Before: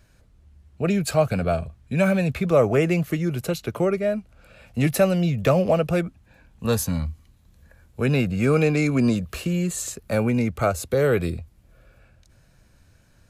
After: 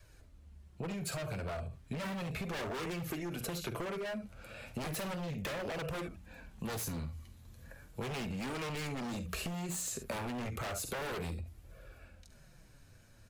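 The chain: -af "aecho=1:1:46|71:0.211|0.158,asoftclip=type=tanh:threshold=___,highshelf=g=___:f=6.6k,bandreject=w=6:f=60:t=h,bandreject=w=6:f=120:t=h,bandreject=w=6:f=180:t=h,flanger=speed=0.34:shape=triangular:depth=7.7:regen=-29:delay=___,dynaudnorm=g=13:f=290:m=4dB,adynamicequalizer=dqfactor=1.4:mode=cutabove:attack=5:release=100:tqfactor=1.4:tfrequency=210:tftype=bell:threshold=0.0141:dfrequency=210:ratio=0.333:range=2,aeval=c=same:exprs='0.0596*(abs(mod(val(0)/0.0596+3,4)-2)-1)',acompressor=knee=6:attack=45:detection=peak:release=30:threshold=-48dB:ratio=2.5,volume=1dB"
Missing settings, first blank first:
-19.5dB, 2.5, 1.7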